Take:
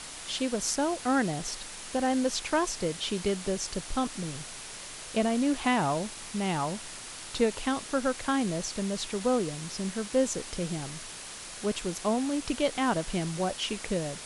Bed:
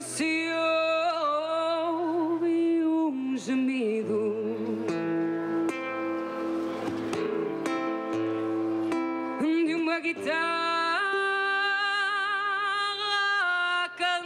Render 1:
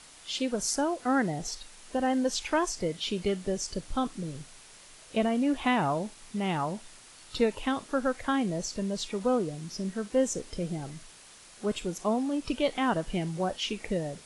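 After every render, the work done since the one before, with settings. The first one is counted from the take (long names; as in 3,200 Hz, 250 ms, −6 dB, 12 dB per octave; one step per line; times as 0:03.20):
noise reduction from a noise print 10 dB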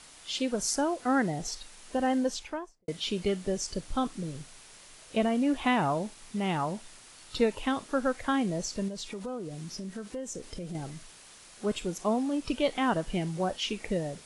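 0:02.12–0:02.88: fade out and dull
0:08.88–0:10.75: downward compressor 4 to 1, threshold −35 dBFS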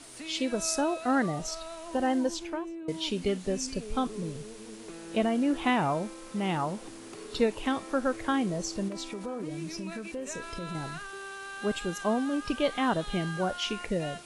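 mix in bed −15 dB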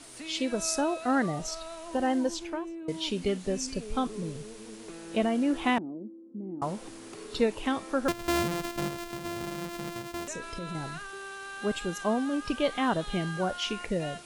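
0:05.78–0:06.62: flat-topped band-pass 280 Hz, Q 2.1
0:08.08–0:10.28: samples sorted by size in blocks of 128 samples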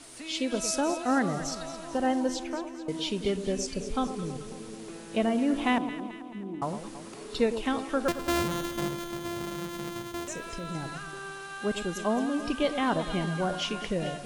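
delay that swaps between a low-pass and a high-pass 109 ms, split 1,100 Hz, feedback 74%, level −9.5 dB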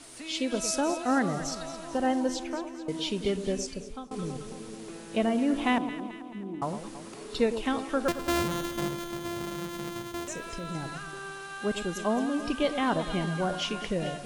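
0:03.52–0:04.11: fade out, to −21.5 dB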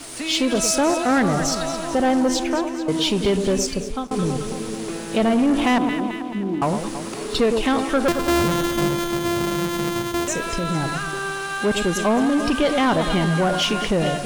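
in parallel at −1 dB: brickwall limiter −23.5 dBFS, peak gain reduction 10 dB
on the sum: leveller curve on the samples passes 2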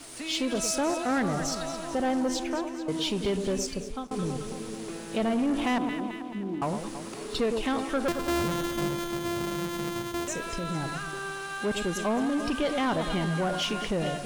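level −8.5 dB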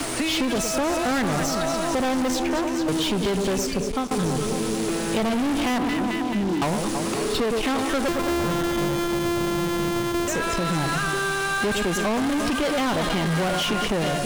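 leveller curve on the samples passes 3
multiband upward and downward compressor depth 70%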